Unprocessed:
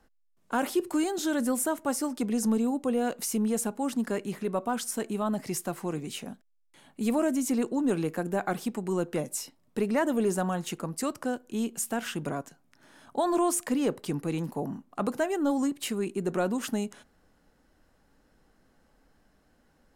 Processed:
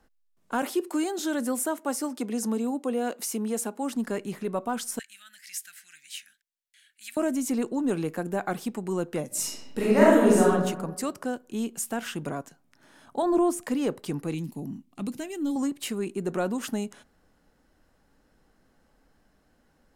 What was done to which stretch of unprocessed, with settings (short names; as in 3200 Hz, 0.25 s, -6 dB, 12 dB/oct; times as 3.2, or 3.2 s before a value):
0.62–3.95 HPF 220 Hz 24 dB/oct
4.99–7.17 elliptic high-pass 1600 Hz
9.27–10.48 reverb throw, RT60 1.1 s, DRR -7.5 dB
13.22–13.64 tilt shelf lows +7 dB, about 700 Hz
14.34–15.56 band shelf 850 Hz -13.5 dB 2.3 oct